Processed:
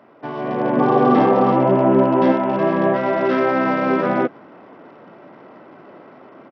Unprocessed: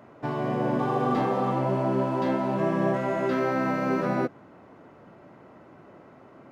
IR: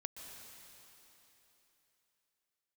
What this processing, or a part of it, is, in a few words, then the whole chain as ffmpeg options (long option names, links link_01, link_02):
Bluetooth headset: -filter_complex "[0:a]asettb=1/sr,asplit=3[link_01][link_02][link_03];[link_01]atrim=end=0.774[link_04];[link_02]atrim=start=0.77:end=2.32,asetpts=PTS-STARTPTS,afade=type=in:duration=0.004:curve=qsin,afade=type=out:start_time=1.546:duration=0.004:curve=qsin,equalizer=frequency=180:width=0.31:gain=5.5[link_05];[link_03]atrim=start=2.316[link_06];[link_04][link_05]acrossfade=duration=0.004:curve1=hsin:curve2=qsin[link_07];[link_07][link_06]acrossfade=duration=0.004:curve1=qsin:curve2=hsin,highpass=210,dynaudnorm=framelen=340:gausssize=3:maxgain=7dB,aresample=8000,aresample=44100,volume=1.5dB" -ar 44100 -c:a sbc -b:a 64k